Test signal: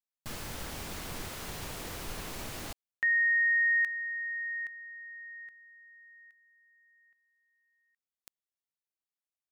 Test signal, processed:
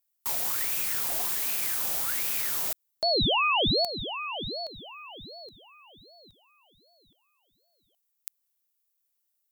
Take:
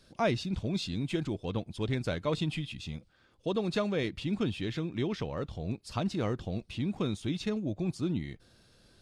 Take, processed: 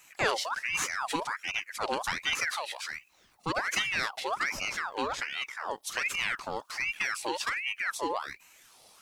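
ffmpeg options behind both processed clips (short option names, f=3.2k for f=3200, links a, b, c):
-af "aemphasis=mode=production:type=75fm,aeval=exprs='val(0)*sin(2*PI*1600*n/s+1600*0.6/1.3*sin(2*PI*1.3*n/s))':c=same,volume=3dB"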